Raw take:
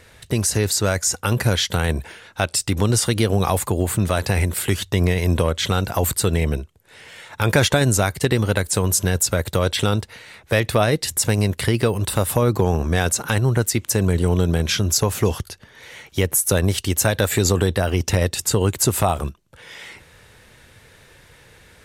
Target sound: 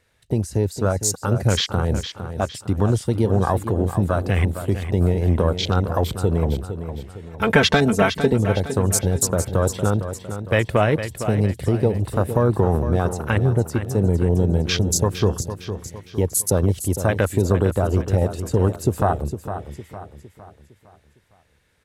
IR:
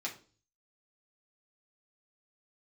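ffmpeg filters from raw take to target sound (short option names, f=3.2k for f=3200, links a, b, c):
-filter_complex "[0:a]afwtdn=0.0631,asettb=1/sr,asplit=3[a][b][c];[a]atrim=end=7.264[d];[b]atrim=start=7.26:end=8.33,asetpts=PTS-STARTPTS,afade=t=in:d=0.004:c=qsin,afade=t=out:st=1.066:d=0.004:c=qsin,aecho=1:1:4.5:0.96,atrim=end_sample=47187[e];[c]atrim=start=8.326[f];[d][e]acrossfade=d=0.004:c1=hsin:c2=qsin[g];[g][f]acrossfade=d=0.004:c1=qsin:c2=hsin,aecho=1:1:458|916|1374|1832|2290:0.316|0.136|0.0585|0.0251|0.0108"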